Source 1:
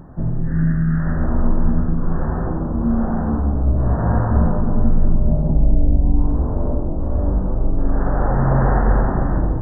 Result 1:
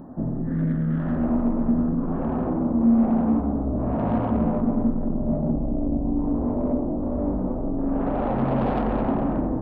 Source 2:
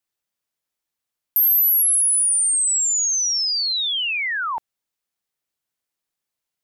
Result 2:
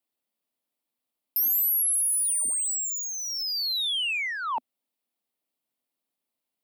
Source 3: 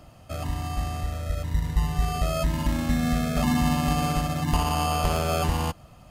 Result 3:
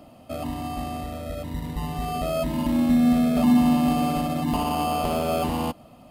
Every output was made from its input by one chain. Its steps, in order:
low-shelf EQ 170 Hz −11.5 dB
soft clipping −21 dBFS
graphic EQ with 15 bands 250 Hz +12 dB, 630 Hz +4 dB, 1,600 Hz −7 dB, 6,300 Hz −9 dB
loudness normalisation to −24 LKFS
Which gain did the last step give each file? −1.0, −0.5, +2.0 decibels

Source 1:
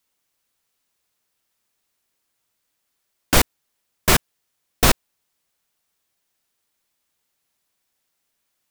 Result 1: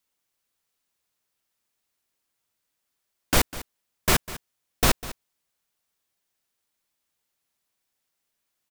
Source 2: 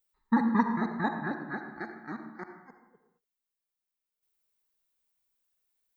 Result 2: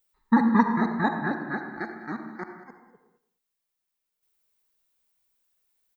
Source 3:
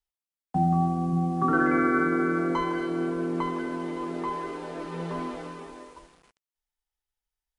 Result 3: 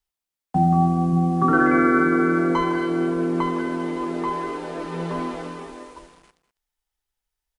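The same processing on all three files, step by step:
single-tap delay 200 ms −16.5 dB
normalise the peak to −6 dBFS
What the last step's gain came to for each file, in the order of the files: −5.0, +5.5, +5.0 decibels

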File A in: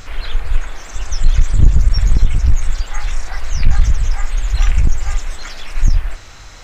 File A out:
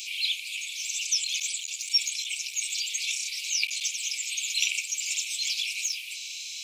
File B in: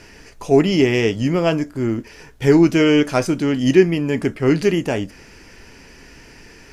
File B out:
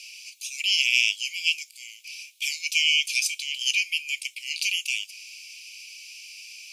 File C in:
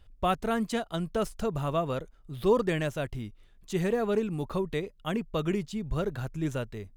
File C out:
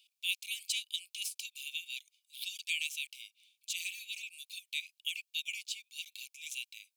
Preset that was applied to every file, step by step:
Chebyshev high-pass filter 2,300 Hz, order 8
level +7.5 dB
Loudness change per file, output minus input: −8.0, −6.5, −7.5 LU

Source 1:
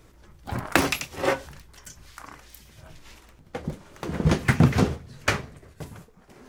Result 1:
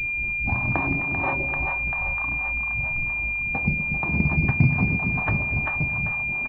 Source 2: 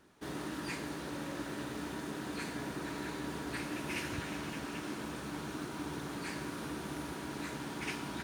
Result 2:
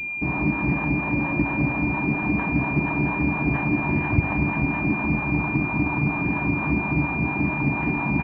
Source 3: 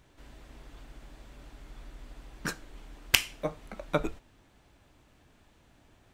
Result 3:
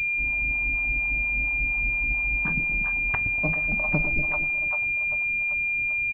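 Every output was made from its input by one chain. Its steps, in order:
high-frequency loss of the air 460 metres
notch filter 520 Hz, Q 14
comb filter 1.1 ms, depth 57%
echo with a time of its own for lows and highs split 620 Hz, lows 119 ms, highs 391 ms, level −7.5 dB
downward compressor 2.5 to 1, threshold −34 dBFS
hum removal 81.59 Hz, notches 10
two-band tremolo in antiphase 4.3 Hz, depth 70%, crossover 550 Hz
dynamic equaliser 470 Hz, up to −4 dB, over −55 dBFS, Q 0.96
switching amplifier with a slow clock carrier 2,400 Hz
loudness normalisation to −23 LKFS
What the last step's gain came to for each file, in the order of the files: +14.5, +22.5, +14.5 decibels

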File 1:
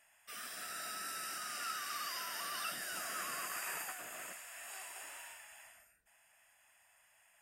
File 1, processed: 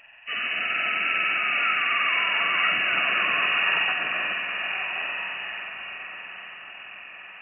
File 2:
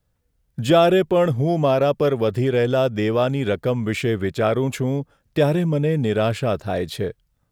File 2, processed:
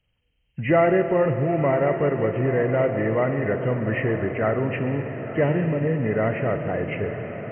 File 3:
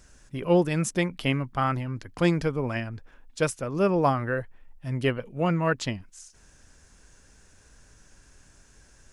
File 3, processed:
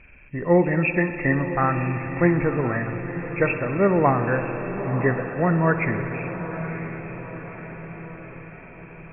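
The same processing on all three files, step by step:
hearing-aid frequency compression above 1,700 Hz 4 to 1
feedback delay with all-pass diffusion 978 ms, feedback 55%, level −10.5 dB
spring reverb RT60 3.4 s, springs 55 ms, chirp 35 ms, DRR 8 dB
loudness normalisation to −23 LKFS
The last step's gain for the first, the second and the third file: +14.0, −3.5, +3.5 decibels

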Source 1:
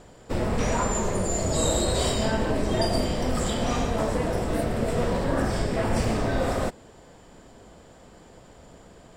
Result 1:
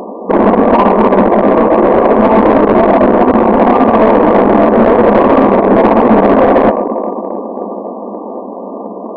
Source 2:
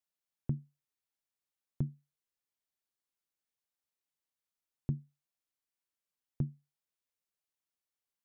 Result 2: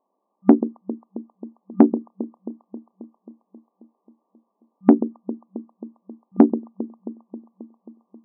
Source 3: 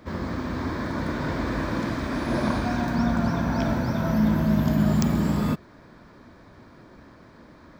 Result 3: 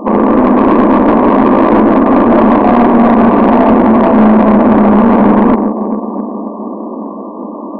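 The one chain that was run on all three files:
in parallel at −3 dB: wrap-around overflow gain 18.5 dB
on the sum: brickwall limiter −19 dBFS
on a send: delay that swaps between a low-pass and a high-pass 134 ms, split 940 Hz, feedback 83%, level −11 dB
on the sum: harmonic generator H 6 −13 dB, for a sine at −14.5 dBFS
brick-wall band-pass 190–1,200 Hz
soft clipping −24.5 dBFS
normalise the peak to −1.5 dBFS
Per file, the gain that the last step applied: +23.0, +24.5, +23.0 decibels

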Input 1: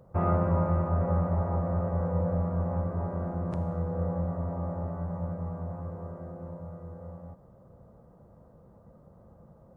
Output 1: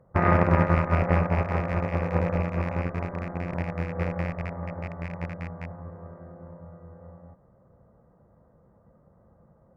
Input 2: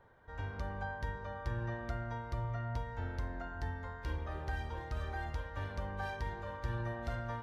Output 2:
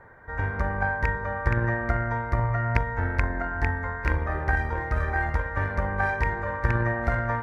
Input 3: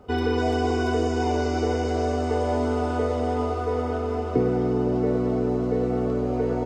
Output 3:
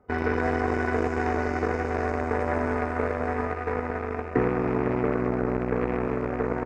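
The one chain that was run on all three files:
loose part that buzzes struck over −30 dBFS, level −29 dBFS
harmonic generator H 6 −31 dB, 7 −19 dB, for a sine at −9 dBFS
high shelf with overshoot 2,500 Hz −8 dB, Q 3
in parallel at +1 dB: brickwall limiter −16.5 dBFS
on the sum: loudness normalisation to −27 LKFS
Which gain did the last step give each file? +2.5, +18.5, −5.5 decibels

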